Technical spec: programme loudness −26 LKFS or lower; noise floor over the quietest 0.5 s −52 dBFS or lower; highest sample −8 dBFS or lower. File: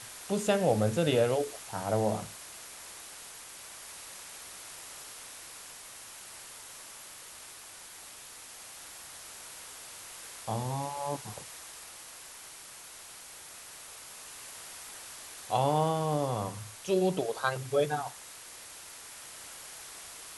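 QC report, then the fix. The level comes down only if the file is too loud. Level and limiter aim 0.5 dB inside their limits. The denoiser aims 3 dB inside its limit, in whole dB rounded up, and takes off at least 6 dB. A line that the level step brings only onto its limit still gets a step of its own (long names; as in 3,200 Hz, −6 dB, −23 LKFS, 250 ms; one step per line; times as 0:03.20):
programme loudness −35.0 LKFS: in spec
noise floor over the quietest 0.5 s −48 dBFS: out of spec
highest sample −13.5 dBFS: in spec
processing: broadband denoise 7 dB, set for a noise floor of −48 dBFS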